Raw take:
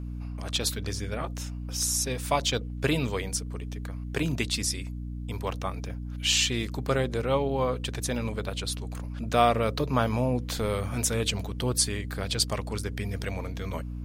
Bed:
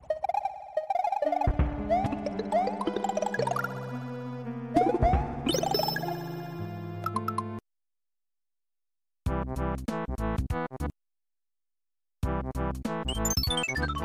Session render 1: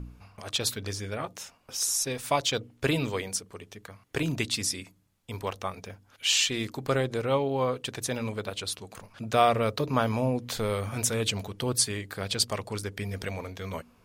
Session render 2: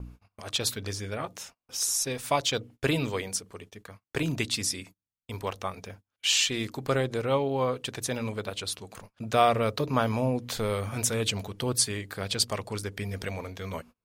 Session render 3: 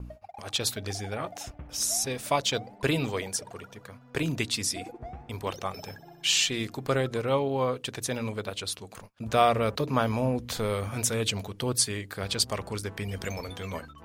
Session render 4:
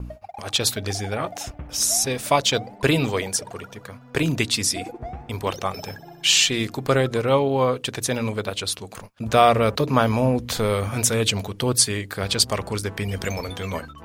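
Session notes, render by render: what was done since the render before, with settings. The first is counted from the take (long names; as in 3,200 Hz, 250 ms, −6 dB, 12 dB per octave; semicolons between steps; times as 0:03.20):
hum removal 60 Hz, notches 5
noise gate −47 dBFS, range −29 dB
mix in bed −17.5 dB
level +7 dB; brickwall limiter −2 dBFS, peak gain reduction 1.5 dB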